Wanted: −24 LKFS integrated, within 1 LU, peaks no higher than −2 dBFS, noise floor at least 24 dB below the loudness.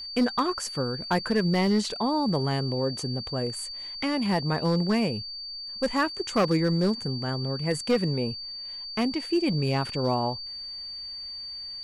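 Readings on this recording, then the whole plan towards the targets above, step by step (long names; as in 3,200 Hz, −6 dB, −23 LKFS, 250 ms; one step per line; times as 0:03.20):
share of clipped samples 0.6%; peaks flattened at −17.0 dBFS; interfering tone 4,600 Hz; level of the tone −35 dBFS; integrated loudness −27.5 LKFS; sample peak −17.0 dBFS; target loudness −24.0 LKFS
→ clipped peaks rebuilt −17 dBFS
notch filter 4,600 Hz, Q 30
level +3.5 dB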